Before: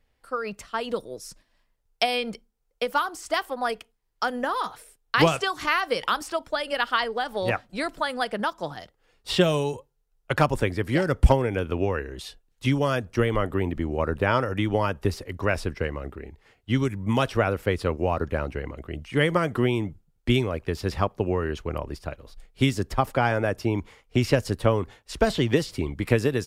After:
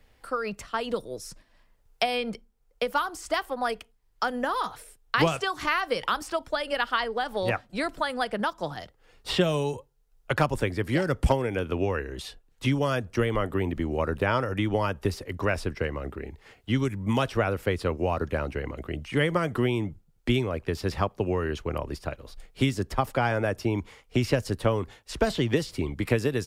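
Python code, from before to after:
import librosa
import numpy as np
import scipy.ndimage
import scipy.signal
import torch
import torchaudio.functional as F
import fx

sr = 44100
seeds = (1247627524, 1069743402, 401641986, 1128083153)

y = fx.band_squash(x, sr, depth_pct=40)
y = y * librosa.db_to_amplitude(-2.0)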